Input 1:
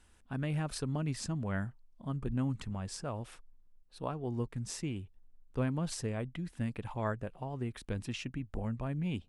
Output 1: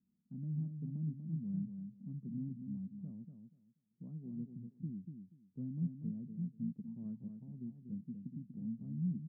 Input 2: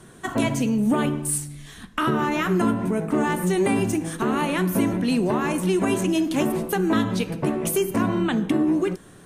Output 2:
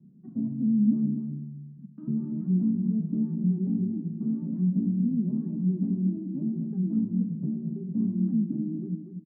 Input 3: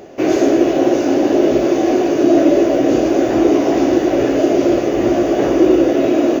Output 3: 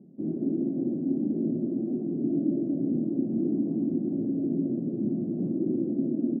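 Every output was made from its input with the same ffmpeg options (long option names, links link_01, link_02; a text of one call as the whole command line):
ffmpeg -i in.wav -af "asuperpass=centerf=190:order=4:qfactor=2.4,aecho=1:1:241|482|723:0.447|0.0849|0.0161" out.wav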